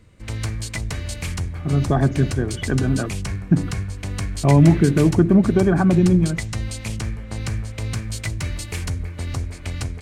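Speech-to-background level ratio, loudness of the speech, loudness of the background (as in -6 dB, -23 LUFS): 10.0 dB, -18.5 LUFS, -28.5 LUFS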